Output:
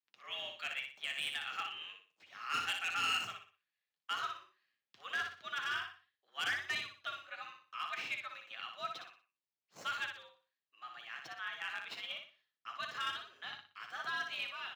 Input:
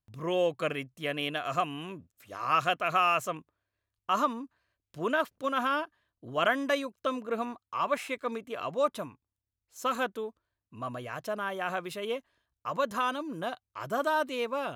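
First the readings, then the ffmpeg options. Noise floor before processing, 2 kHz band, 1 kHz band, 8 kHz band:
under -85 dBFS, -3.5 dB, -12.0 dB, -4.0 dB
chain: -filter_complex "[0:a]asuperpass=centerf=3600:order=4:qfactor=0.68,flanger=delay=6.2:depth=4.4:regen=-47:speed=0.89:shape=sinusoidal,acrossover=split=5600[a][b];[b]acrusher=samples=18:mix=1:aa=0.000001:lfo=1:lforange=10.8:lforate=1.5[c];[a][c]amix=inputs=2:normalize=0,volume=33.5dB,asoftclip=hard,volume=-33.5dB,asplit=2[d][e];[e]aecho=0:1:60|120|180|240:0.531|0.175|0.0578|0.0191[f];[d][f]amix=inputs=2:normalize=0,afreqshift=92,volume=3dB"

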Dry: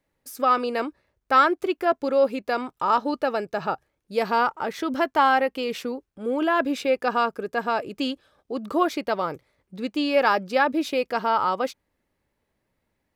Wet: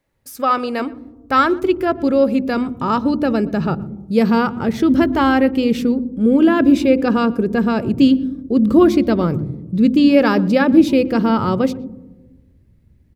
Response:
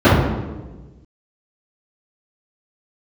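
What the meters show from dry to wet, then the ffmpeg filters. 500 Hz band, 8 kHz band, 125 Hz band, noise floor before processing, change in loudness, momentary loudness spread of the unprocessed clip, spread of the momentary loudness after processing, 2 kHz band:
+6.0 dB, n/a, +21.5 dB, -77 dBFS, +8.0 dB, 11 LU, 9 LU, +2.5 dB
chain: -filter_complex "[0:a]asubboost=boost=10:cutoff=250,asplit=2[a][b];[b]adelay=120,highpass=300,lowpass=3.4k,asoftclip=type=hard:threshold=-14.5dB,volume=-22dB[c];[a][c]amix=inputs=2:normalize=0,asplit=2[d][e];[1:a]atrim=start_sample=2205,lowpass=1.1k,lowshelf=f=200:g=11[f];[e][f]afir=irnorm=-1:irlink=0,volume=-48.5dB[g];[d][g]amix=inputs=2:normalize=0,volume=4dB"

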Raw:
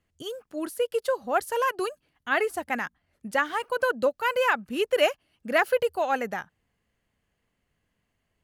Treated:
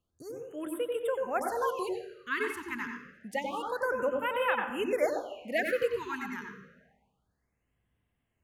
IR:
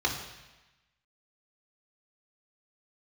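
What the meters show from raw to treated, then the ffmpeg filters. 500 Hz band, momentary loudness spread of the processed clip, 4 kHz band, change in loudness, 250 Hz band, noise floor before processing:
-5.0 dB, 11 LU, -9.0 dB, -5.5 dB, -3.0 dB, -78 dBFS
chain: -filter_complex "[0:a]asplit=2[a][b];[1:a]atrim=start_sample=2205,lowshelf=f=390:g=7,adelay=90[c];[b][c]afir=irnorm=-1:irlink=0,volume=-13.5dB[d];[a][d]amix=inputs=2:normalize=0,afftfilt=real='re*(1-between(b*sr/1024,580*pow(5500/580,0.5+0.5*sin(2*PI*0.28*pts/sr))/1.41,580*pow(5500/580,0.5+0.5*sin(2*PI*0.28*pts/sr))*1.41))':imag='im*(1-between(b*sr/1024,580*pow(5500/580,0.5+0.5*sin(2*PI*0.28*pts/sr))/1.41,580*pow(5500/580,0.5+0.5*sin(2*PI*0.28*pts/sr))*1.41))':win_size=1024:overlap=0.75,volume=-7dB"

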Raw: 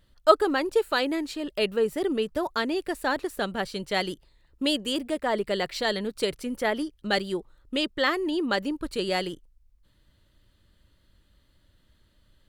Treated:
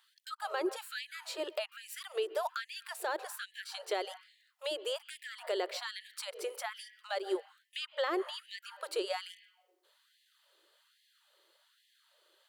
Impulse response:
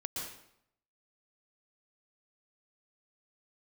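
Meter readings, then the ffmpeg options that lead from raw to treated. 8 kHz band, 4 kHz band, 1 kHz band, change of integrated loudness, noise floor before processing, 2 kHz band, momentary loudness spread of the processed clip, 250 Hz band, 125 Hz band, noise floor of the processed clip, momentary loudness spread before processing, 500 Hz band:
-4.5 dB, -9.5 dB, -10.5 dB, -11.0 dB, -65 dBFS, -11.0 dB, 9 LU, -17.0 dB, under -40 dB, -72 dBFS, 7 LU, -10.5 dB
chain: -filter_complex "[0:a]asplit=2[a][b];[1:a]atrim=start_sample=2205,lowpass=2.7k[c];[b][c]afir=irnorm=-1:irlink=0,volume=-19dB[d];[a][d]amix=inputs=2:normalize=0,acrossover=split=170|1700[e][f][g];[e]acompressor=threshold=-45dB:ratio=4[h];[f]acompressor=threshold=-30dB:ratio=4[i];[g]acompressor=threshold=-43dB:ratio=4[j];[h][i][j]amix=inputs=3:normalize=0,alimiter=level_in=0.5dB:limit=-24dB:level=0:latency=1:release=52,volume=-0.5dB,equalizer=f=1.9k:t=o:w=0.34:g=-4,afftfilt=real='re*gte(b*sr/1024,310*pow(1700/310,0.5+0.5*sin(2*PI*1.2*pts/sr)))':imag='im*gte(b*sr/1024,310*pow(1700/310,0.5+0.5*sin(2*PI*1.2*pts/sr)))':win_size=1024:overlap=0.75,volume=2.5dB"

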